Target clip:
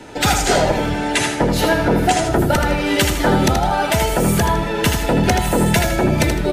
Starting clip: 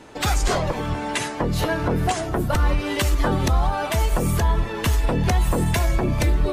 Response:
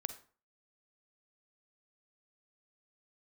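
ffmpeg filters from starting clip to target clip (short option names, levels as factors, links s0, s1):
-filter_complex "[0:a]asuperstop=centerf=1100:order=12:qfactor=6.4,acrossover=split=120|1300[s0][s1][s2];[s0]acompressor=threshold=0.0251:ratio=6[s3];[s3][s1][s2]amix=inputs=3:normalize=0,aecho=1:1:79|158|237|316:0.501|0.155|0.0482|0.0149,volume=2.24"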